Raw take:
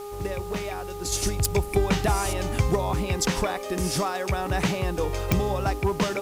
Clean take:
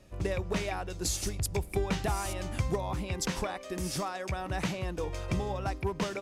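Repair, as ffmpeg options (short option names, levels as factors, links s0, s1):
-af "adeclick=t=4,bandreject=f=408.9:t=h:w=4,bandreject=f=817.8:t=h:w=4,bandreject=f=1226.7:t=h:w=4,afwtdn=0.0035,asetnsamples=n=441:p=0,asendcmd='1.12 volume volume -7.5dB',volume=1"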